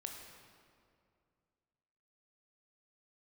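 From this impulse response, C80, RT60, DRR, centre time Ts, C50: 4.5 dB, 2.3 s, 1.5 dB, 66 ms, 3.5 dB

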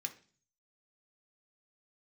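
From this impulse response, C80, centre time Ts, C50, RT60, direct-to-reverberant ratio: 19.0 dB, 7 ms, 14.0 dB, 0.40 s, 3.5 dB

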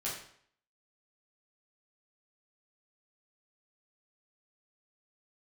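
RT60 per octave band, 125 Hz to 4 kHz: 0.60 s, 0.55 s, 0.60 s, 0.60 s, 0.60 s, 0.55 s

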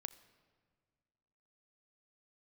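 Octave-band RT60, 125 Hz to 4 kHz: 2.2 s, 2.2 s, 1.9 s, 1.7 s, 1.5 s, 1.1 s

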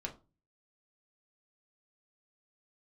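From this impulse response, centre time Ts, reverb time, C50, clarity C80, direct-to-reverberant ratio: 11 ms, 0.30 s, 14.0 dB, 20.0 dB, 0.0 dB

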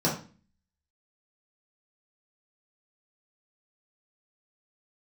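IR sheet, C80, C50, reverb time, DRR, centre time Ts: 12.0 dB, 6.5 dB, 0.35 s, -6.5 dB, 28 ms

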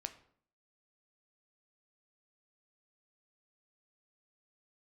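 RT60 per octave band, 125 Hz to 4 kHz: 0.60 s, 0.65 s, 0.60 s, 0.55 s, 0.45 s, 0.40 s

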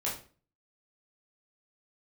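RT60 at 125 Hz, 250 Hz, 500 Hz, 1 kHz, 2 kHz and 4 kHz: 0.55 s, 0.50 s, 0.40 s, 0.35 s, 0.35 s, 0.30 s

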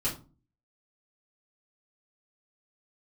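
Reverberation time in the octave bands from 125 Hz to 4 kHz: 0.55 s, 0.55 s, 0.35 s, 0.35 s, 0.25 s, 0.20 s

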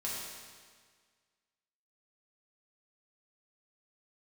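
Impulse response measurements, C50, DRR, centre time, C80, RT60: -1.0 dB, -6.5 dB, 102 ms, 1.0 dB, 1.7 s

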